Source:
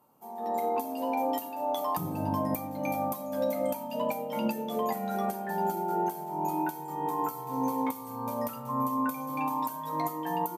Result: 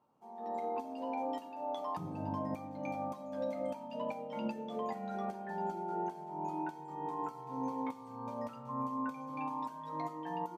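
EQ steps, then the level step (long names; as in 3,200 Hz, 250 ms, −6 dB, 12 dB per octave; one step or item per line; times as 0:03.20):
high-frequency loss of the air 110 metres
−7.5 dB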